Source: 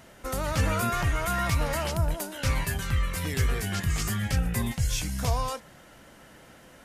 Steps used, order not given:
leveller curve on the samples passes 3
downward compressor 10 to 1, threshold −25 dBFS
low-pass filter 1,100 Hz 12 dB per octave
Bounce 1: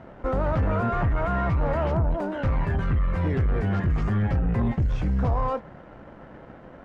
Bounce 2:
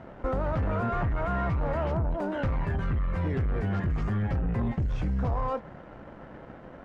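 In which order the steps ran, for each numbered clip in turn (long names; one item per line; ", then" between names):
downward compressor, then leveller curve on the samples, then low-pass filter
leveller curve on the samples, then low-pass filter, then downward compressor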